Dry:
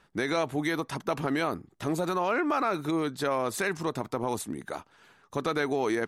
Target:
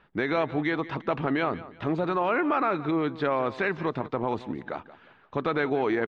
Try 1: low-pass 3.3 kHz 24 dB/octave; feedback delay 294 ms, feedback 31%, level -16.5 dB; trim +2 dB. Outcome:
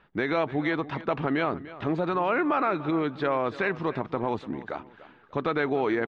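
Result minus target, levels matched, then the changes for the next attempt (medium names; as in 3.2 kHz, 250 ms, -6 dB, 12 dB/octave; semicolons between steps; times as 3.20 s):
echo 117 ms late
change: feedback delay 177 ms, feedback 31%, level -16.5 dB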